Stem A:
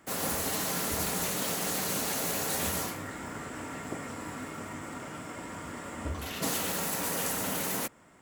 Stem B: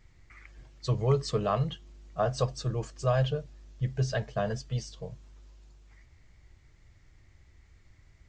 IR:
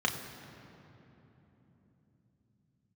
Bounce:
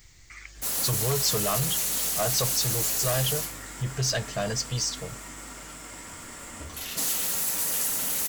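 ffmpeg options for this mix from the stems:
-filter_complex "[0:a]highshelf=f=7.7k:g=-10,adelay=550,volume=-6.5dB[a];[1:a]volume=2dB[b];[a][b]amix=inputs=2:normalize=0,crystalizer=i=6:c=0,asoftclip=type=tanh:threshold=-21.5dB,bass=f=250:g=0,treble=f=4k:g=3"

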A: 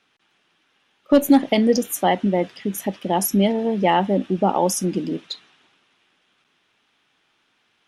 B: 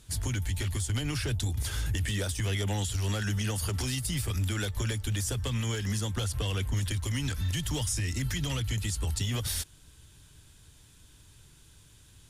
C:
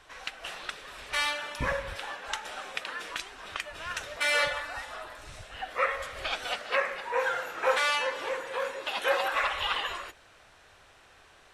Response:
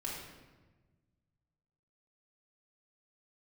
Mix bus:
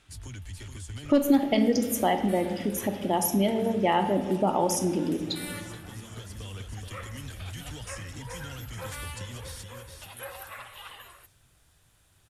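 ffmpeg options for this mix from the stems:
-filter_complex "[0:a]volume=-2dB,asplit=4[a][b][c][d];[b]volume=-4.5dB[e];[c]volume=-22.5dB[f];[1:a]lowpass=11k,volume=-10dB,asplit=2[g][h];[h]volume=-6dB[i];[2:a]aexciter=amount=12:drive=4.7:freq=8.8k,adelay=1150,volume=-15dB[j];[d]apad=whole_len=542103[k];[g][k]sidechaincompress=threshold=-40dB:ratio=8:attack=16:release=969[l];[3:a]atrim=start_sample=2205[m];[e][m]afir=irnorm=-1:irlink=0[n];[f][i]amix=inputs=2:normalize=0,aecho=0:1:426|852|1278|1704|2130|2556:1|0.44|0.194|0.0852|0.0375|0.0165[o];[a][l][j][n][o]amix=inputs=5:normalize=0,acompressor=threshold=-32dB:ratio=1.5"

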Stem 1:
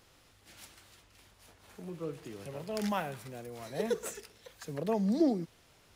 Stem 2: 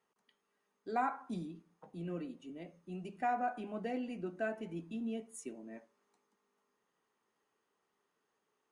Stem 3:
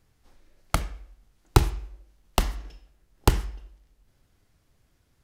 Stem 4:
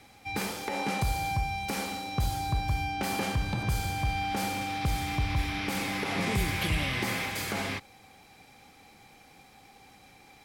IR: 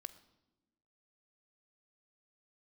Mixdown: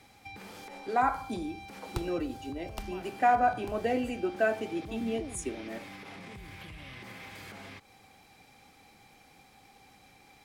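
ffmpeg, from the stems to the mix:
-filter_complex "[0:a]volume=-15.5dB[a];[1:a]highpass=f=260:w=0.5412,highpass=f=260:w=1.3066,dynaudnorm=f=140:g=13:m=12.5dB,volume=-2dB,asplit=2[b][c];[2:a]adelay=400,volume=-14dB[d];[3:a]acrossover=split=4100[e][f];[f]acompressor=threshold=-44dB:ratio=4:attack=1:release=60[g];[e][g]amix=inputs=2:normalize=0,alimiter=level_in=4dB:limit=-24dB:level=0:latency=1:release=155,volume=-4dB,acompressor=threshold=-40dB:ratio=6,volume=-3dB[h];[c]apad=whole_len=248397[i];[d][i]sidechaincompress=threshold=-40dB:ratio=8:attack=8.1:release=522[j];[a][b][j][h]amix=inputs=4:normalize=0"

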